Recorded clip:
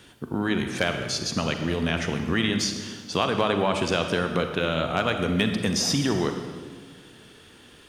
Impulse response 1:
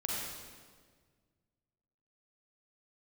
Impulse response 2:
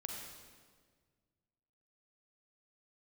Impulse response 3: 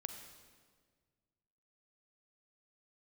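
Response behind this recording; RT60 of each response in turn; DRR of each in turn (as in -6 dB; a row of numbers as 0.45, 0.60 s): 3; 1.7, 1.7, 1.7 s; -4.5, 0.0, 6.0 dB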